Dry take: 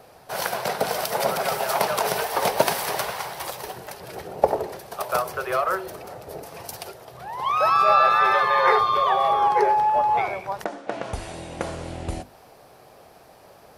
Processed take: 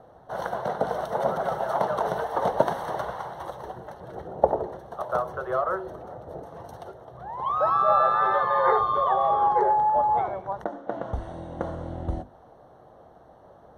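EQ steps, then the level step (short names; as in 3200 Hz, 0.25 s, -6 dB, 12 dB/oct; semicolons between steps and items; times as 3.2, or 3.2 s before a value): running mean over 18 samples; bell 61 Hz +6 dB 0.27 oct; notch 410 Hz, Q 12; 0.0 dB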